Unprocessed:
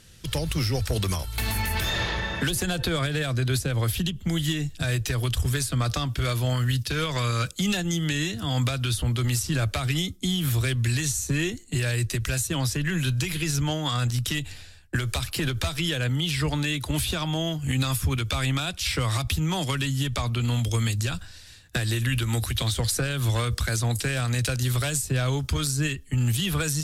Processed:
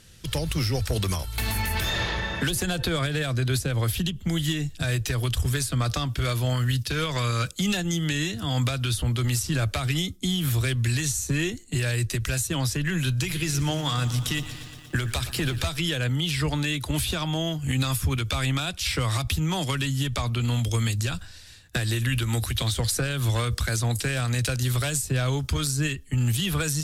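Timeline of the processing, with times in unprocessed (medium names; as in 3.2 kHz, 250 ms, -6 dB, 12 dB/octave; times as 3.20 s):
13.14–15.63 s: bit-crushed delay 118 ms, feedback 80%, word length 8-bit, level -15 dB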